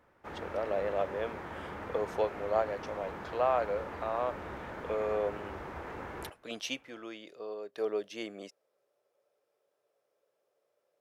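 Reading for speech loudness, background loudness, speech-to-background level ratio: −35.0 LKFS, −43.0 LKFS, 8.0 dB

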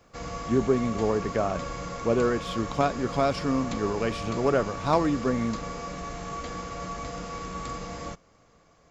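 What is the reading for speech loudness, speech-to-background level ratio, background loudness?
−27.5 LKFS, 8.0 dB, −35.5 LKFS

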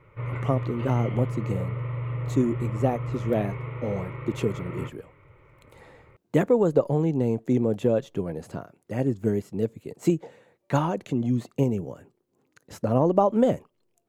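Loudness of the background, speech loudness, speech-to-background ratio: −32.5 LKFS, −26.5 LKFS, 6.0 dB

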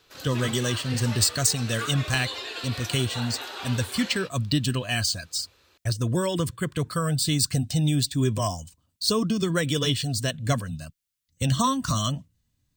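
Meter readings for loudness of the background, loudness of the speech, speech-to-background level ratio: −35.5 LKFS, −26.0 LKFS, 9.5 dB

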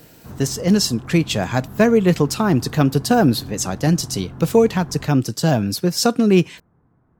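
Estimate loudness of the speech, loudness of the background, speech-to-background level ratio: −18.5 LKFS, −37.0 LKFS, 18.5 dB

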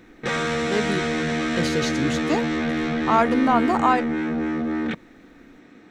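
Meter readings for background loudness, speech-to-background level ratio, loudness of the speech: −24.5 LKFS, 0.5 dB, −24.0 LKFS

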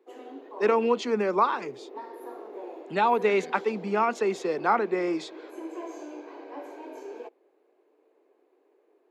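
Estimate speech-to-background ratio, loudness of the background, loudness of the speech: 16.0 dB, −42.0 LKFS, −26.0 LKFS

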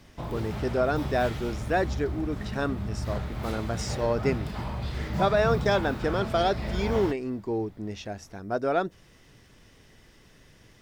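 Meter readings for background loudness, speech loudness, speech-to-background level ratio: −33.5 LKFS, −29.0 LKFS, 4.5 dB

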